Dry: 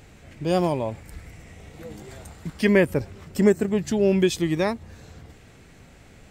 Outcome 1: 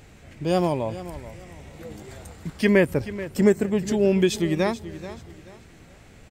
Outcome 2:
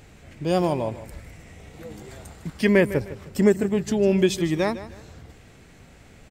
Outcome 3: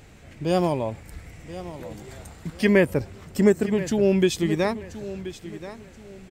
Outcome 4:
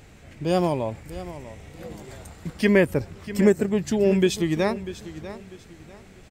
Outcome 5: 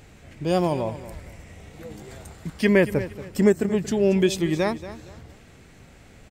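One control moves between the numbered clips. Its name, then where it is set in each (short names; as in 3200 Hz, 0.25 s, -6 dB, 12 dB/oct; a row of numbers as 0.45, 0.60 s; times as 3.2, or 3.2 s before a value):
feedback echo, time: 0.432, 0.154, 1.029, 0.644, 0.231 s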